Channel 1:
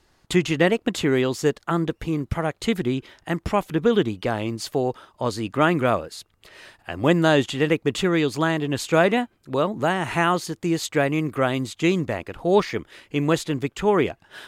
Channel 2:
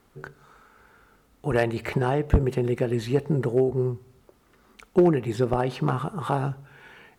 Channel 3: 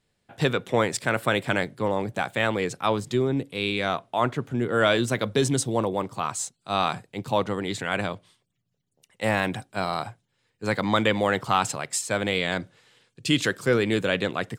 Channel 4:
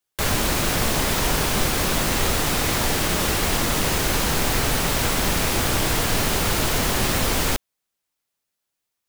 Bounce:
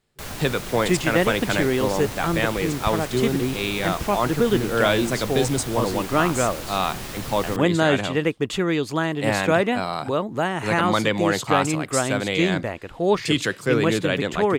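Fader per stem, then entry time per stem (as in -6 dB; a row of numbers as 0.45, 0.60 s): -1.5, -18.0, +0.5, -12.5 dB; 0.55, 0.00, 0.00, 0.00 s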